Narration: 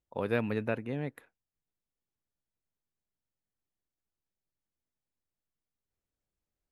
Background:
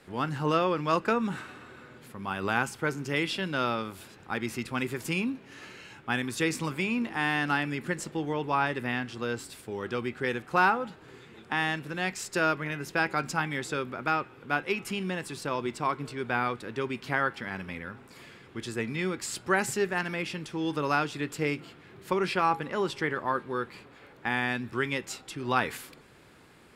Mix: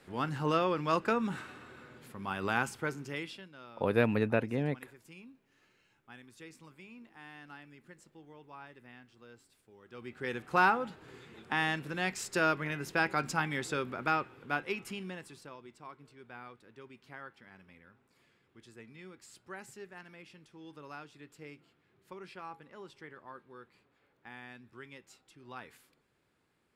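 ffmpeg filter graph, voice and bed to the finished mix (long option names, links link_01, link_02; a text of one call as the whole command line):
ffmpeg -i stem1.wav -i stem2.wav -filter_complex "[0:a]adelay=3650,volume=3dB[link_01];[1:a]volume=17dB,afade=type=out:start_time=2.66:duration=0.84:silence=0.105925,afade=type=in:start_time=9.88:duration=0.71:silence=0.0944061,afade=type=out:start_time=14.14:duration=1.44:silence=0.133352[link_02];[link_01][link_02]amix=inputs=2:normalize=0" out.wav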